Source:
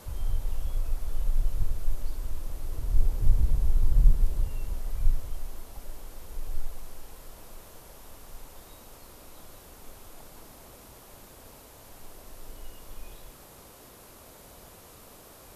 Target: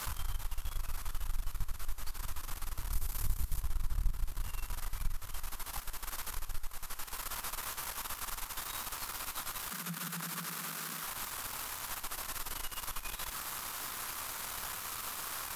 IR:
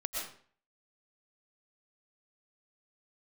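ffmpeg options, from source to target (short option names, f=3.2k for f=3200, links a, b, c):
-filter_complex "[0:a]aeval=exprs='if(lt(val(0),0),0.251*val(0),val(0))':c=same,asettb=1/sr,asplit=3[a][b][c];[a]atrim=end=2.924[d];[b]atrim=start=2.92:end=3.61,asetpts=PTS-STARTPTS,afade=t=in:d=0.004:c=qsin,afade=t=out:st=0.686:d=0.004:c=qsin,aemphasis=mode=production:type=cd[e];[c]atrim=start=3.606[f];[d][e]acrossfade=d=0.004:c1=hsin:c2=qsin[g];[g][f]acrossfade=d=0.004:c1=qsin:c2=hsin,acompressor=threshold=-41dB:ratio=2,lowshelf=f=790:t=q:w=1.5:g=-12,asettb=1/sr,asplit=3[h][i][j];[h]atrim=end=9.704[k];[i]atrim=start=9.7:end=11.04,asetpts=PTS-STARTPTS,afade=t=in:d=0.004:c=qsin,afade=t=out:st=1.336:d=0.004:c=qsin,afreqshift=160[l];[j]atrim=start=11.036[m];[k][l]acrossfade=d=0.004:c1=hsin:c2=qsin[n];[n][m]acrossfade=d=0.004:c1=qsin:c2=hsin,volume=15dB"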